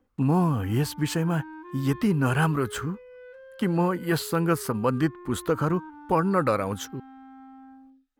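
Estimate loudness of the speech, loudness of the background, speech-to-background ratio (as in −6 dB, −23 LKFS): −26.0 LKFS, −45.0 LKFS, 19.0 dB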